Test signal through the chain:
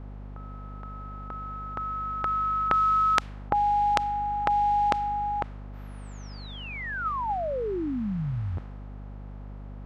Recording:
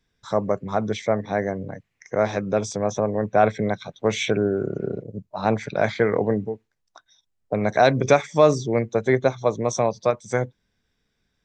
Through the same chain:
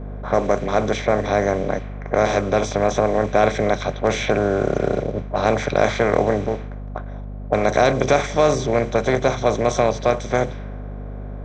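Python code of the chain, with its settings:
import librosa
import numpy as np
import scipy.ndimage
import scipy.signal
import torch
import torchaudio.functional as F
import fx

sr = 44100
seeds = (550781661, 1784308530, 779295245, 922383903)

y = fx.bin_compress(x, sr, power=0.4)
y = fx.env_lowpass(y, sr, base_hz=730.0, full_db=-11.0)
y = fx.add_hum(y, sr, base_hz=50, snr_db=11)
y = y * librosa.db_to_amplitude(-3.5)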